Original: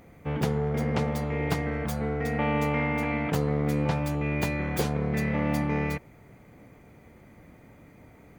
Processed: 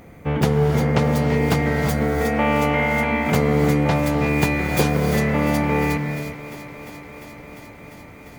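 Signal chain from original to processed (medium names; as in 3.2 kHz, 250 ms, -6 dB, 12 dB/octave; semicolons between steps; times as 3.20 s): thinning echo 349 ms, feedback 83%, high-pass 160 Hz, level -15.5 dB; gated-style reverb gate 390 ms rising, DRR 5.5 dB; trim +8 dB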